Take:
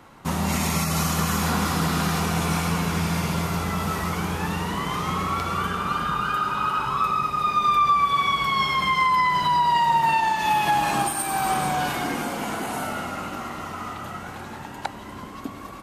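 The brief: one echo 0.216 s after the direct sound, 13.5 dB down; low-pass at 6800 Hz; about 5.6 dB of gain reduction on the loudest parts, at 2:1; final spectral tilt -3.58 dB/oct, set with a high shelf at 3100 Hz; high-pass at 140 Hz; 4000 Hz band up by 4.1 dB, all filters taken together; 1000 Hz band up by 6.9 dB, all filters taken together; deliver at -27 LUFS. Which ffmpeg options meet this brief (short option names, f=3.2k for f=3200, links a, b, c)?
-af "highpass=140,lowpass=6.8k,equalizer=f=1k:t=o:g=7.5,highshelf=f=3.1k:g=3,equalizer=f=4k:t=o:g=3,acompressor=threshold=-20dB:ratio=2,aecho=1:1:216:0.211,volume=-5.5dB"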